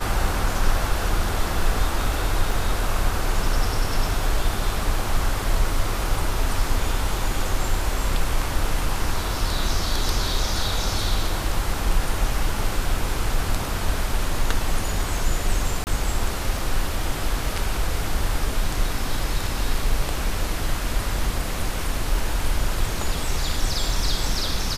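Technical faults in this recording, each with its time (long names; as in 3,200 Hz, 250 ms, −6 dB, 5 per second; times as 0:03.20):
0:02.51: drop-out 2.6 ms
0:15.84–0:15.87: drop-out 29 ms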